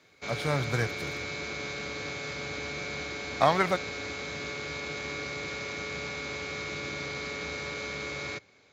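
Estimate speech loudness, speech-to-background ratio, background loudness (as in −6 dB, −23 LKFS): −29.0 LKFS, 6.0 dB, −35.0 LKFS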